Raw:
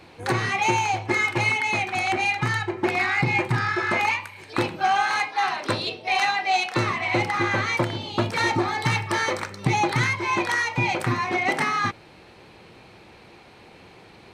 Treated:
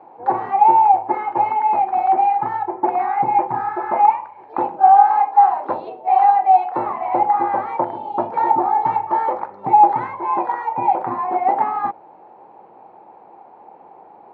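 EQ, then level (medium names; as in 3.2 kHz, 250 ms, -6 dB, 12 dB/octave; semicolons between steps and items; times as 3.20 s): high-pass 270 Hz 12 dB/octave; resonant low-pass 840 Hz, resonance Q 5.8; -1.0 dB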